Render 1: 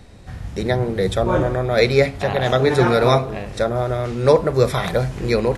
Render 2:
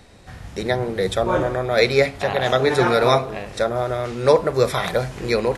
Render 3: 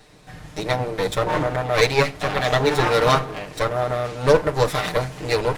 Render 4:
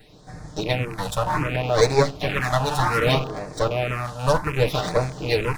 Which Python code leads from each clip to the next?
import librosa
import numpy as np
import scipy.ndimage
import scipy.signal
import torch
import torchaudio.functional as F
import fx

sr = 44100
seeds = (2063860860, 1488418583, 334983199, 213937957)

y1 = fx.low_shelf(x, sr, hz=280.0, db=-8.5)
y1 = y1 * librosa.db_to_amplitude(1.0)
y2 = fx.lower_of_two(y1, sr, delay_ms=6.6)
y3 = fx.rattle_buzz(y2, sr, strikes_db=-32.0, level_db=-20.0)
y3 = fx.phaser_stages(y3, sr, stages=4, low_hz=360.0, high_hz=3000.0, hz=0.65, feedback_pct=5)
y3 = y3 * librosa.db_to_amplitude(1.5)